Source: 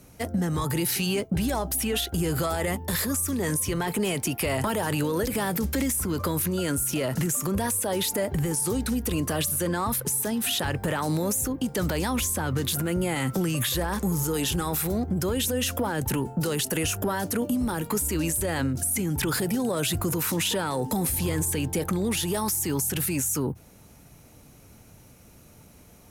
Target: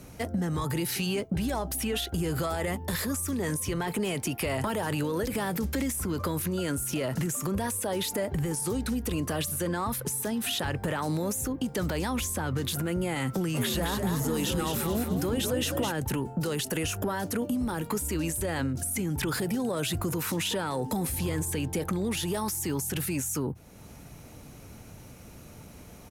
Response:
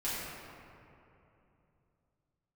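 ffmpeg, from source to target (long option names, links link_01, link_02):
-filter_complex "[0:a]highshelf=frequency=7300:gain=-5.5,acompressor=threshold=-46dB:ratio=1.5,asplit=3[link_01][link_02][link_03];[link_01]afade=type=out:start_time=13.54:duration=0.02[link_04];[link_02]asplit=6[link_05][link_06][link_07][link_08][link_09][link_10];[link_06]adelay=213,afreqshift=55,volume=-5dB[link_11];[link_07]adelay=426,afreqshift=110,volume=-13.2dB[link_12];[link_08]adelay=639,afreqshift=165,volume=-21.4dB[link_13];[link_09]adelay=852,afreqshift=220,volume=-29.5dB[link_14];[link_10]adelay=1065,afreqshift=275,volume=-37.7dB[link_15];[link_05][link_11][link_12][link_13][link_14][link_15]amix=inputs=6:normalize=0,afade=type=in:start_time=13.54:duration=0.02,afade=type=out:start_time=15.91:duration=0.02[link_16];[link_03]afade=type=in:start_time=15.91:duration=0.02[link_17];[link_04][link_16][link_17]amix=inputs=3:normalize=0,volume=5dB"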